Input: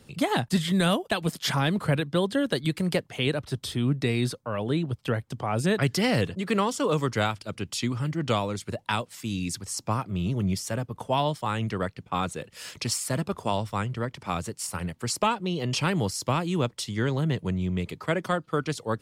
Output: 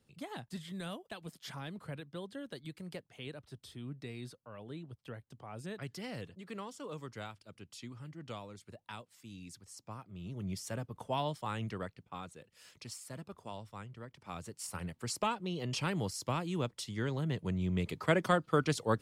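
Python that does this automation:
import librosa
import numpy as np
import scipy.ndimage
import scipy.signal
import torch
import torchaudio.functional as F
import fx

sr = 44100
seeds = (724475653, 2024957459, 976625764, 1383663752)

y = fx.gain(x, sr, db=fx.line((10.11, -19.0), (10.66, -9.5), (11.67, -9.5), (12.27, -18.0), (14.09, -18.0), (14.69, -9.0), (17.26, -9.0), (18.06, -2.0)))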